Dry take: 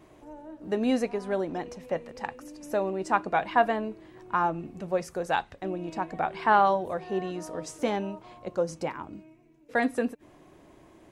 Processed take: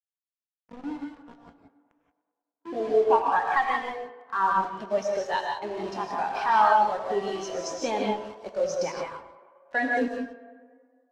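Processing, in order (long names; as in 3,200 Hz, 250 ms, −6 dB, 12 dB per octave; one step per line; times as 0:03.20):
pitch glide at a constant tempo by +3 semitones ending unshifted
spectral tilt +2.5 dB per octave
in parallel at +1 dB: downward compressor 6 to 1, threshold −34 dBFS, peak gain reduction 16.5 dB
on the sum: low-pass filter sweep 160 Hz → 5,700 Hz, 0:02.39–0:03.98
automatic gain control gain up to 5 dB
soft clipping −12 dBFS, distortion −13 dB
bit reduction 5 bits
high-frequency loss of the air 51 metres
on a send: tape delay 102 ms, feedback 83%, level −11 dB, low-pass 3,500 Hz
on the sum: reverb whose tail is shaped and stops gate 200 ms rising, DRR 0.5 dB
every bin expanded away from the loudest bin 1.5 to 1
level −4 dB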